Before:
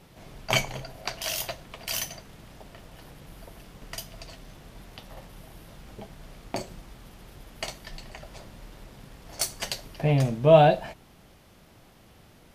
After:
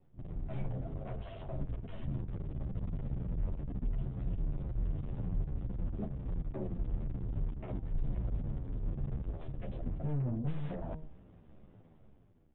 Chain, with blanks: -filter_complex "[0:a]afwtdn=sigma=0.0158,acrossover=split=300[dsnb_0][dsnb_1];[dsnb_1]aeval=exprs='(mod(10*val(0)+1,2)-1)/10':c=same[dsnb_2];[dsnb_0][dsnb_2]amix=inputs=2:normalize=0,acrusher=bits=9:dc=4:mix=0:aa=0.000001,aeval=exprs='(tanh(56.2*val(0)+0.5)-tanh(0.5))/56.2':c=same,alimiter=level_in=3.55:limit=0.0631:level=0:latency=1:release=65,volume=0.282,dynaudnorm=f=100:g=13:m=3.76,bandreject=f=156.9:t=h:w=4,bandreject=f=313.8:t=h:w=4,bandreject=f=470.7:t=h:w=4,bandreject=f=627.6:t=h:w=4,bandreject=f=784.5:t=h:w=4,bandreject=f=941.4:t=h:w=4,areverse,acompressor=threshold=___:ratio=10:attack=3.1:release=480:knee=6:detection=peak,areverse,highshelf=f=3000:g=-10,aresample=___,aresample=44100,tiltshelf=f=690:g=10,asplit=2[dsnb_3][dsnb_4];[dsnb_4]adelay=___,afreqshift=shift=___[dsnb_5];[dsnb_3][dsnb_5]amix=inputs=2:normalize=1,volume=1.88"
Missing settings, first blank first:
0.00891, 8000, 10.4, -2